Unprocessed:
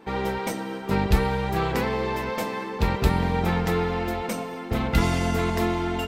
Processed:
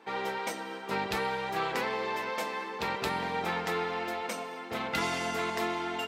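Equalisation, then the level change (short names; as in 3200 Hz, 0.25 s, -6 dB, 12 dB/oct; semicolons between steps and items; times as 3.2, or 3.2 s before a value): weighting filter A; -3.5 dB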